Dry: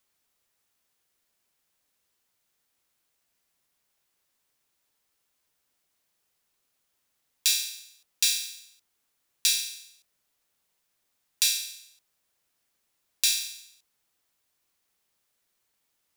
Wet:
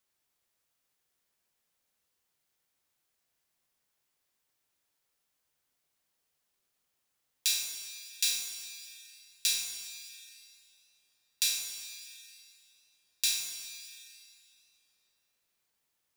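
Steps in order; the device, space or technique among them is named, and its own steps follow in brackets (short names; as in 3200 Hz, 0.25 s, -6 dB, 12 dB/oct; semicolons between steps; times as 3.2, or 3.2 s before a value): saturated reverb return (on a send at -3 dB: reverb RT60 3.1 s, pre-delay 3 ms + soft clip -28.5 dBFS, distortion -10 dB); on the sum: gain -5.5 dB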